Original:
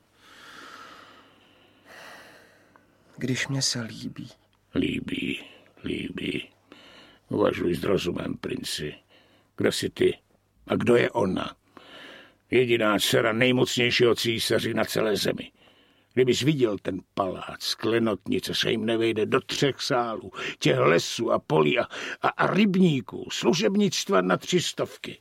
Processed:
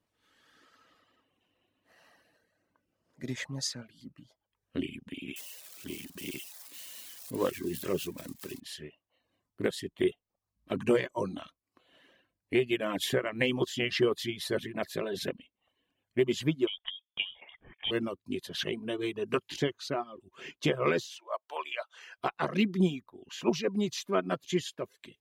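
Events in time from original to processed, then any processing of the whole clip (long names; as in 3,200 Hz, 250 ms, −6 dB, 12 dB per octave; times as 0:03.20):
0:05.36–0:08.60: spike at every zero crossing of −22 dBFS
0:16.67–0:17.91: voice inversion scrambler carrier 3,500 Hz
0:21.06–0:22.18: high-pass filter 620 Hz 24 dB per octave
whole clip: notch filter 1,400 Hz, Q 11; reverb reduction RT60 0.59 s; expander for the loud parts 1.5 to 1, over −40 dBFS; level −4.5 dB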